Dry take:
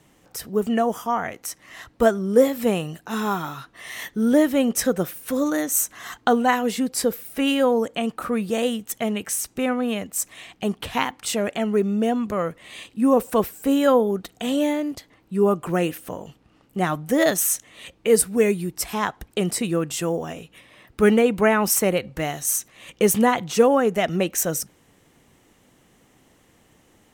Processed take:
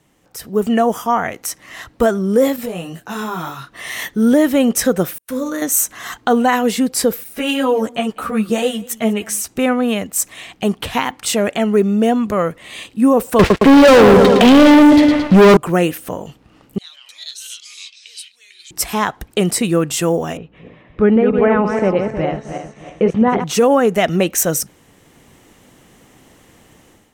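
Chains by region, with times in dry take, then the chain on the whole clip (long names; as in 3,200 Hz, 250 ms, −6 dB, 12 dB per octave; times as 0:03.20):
0:02.56–0:03.72: gain into a clipping stage and back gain 11.5 dB + downward compressor, threshold −24 dBFS + micro pitch shift up and down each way 16 cents
0:05.18–0:05.62: noise gate −36 dBFS, range −35 dB + notch filter 760 Hz, Q 8.5 + tuned comb filter 63 Hz, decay 0.51 s, mix 70%
0:07.24–0:09.48: single-tap delay 197 ms −22.5 dB + string-ensemble chorus
0:13.39–0:15.57: low-pass filter 3,700 Hz 24 dB per octave + repeating echo 111 ms, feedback 56%, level −10 dB + leveller curve on the samples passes 5
0:16.78–0:18.71: downward compressor 2 to 1, threshold −25 dBFS + four-pole ladder band-pass 4,100 Hz, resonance 85% + delay with pitch and tempo change per echo 117 ms, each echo −4 semitones, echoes 2, each echo −6 dB
0:20.37–0:23.44: feedback delay that plays each chunk backwards 158 ms, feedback 56%, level −5.5 dB + head-to-tape spacing loss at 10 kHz 44 dB
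whole clip: brickwall limiter −11.5 dBFS; automatic gain control gain up to 11.5 dB; level −2 dB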